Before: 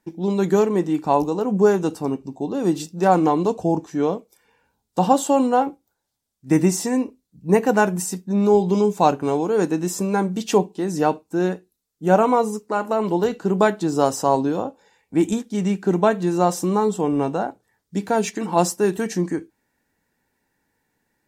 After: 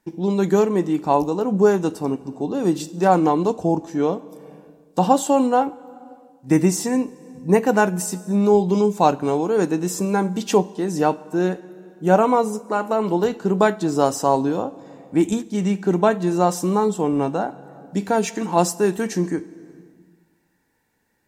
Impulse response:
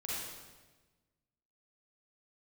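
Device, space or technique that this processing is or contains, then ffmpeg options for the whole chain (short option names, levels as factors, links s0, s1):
compressed reverb return: -filter_complex "[0:a]asplit=2[s0][s1];[1:a]atrim=start_sample=2205[s2];[s1][s2]afir=irnorm=-1:irlink=0,acompressor=threshold=0.0398:ratio=12,volume=0.422[s3];[s0][s3]amix=inputs=2:normalize=0"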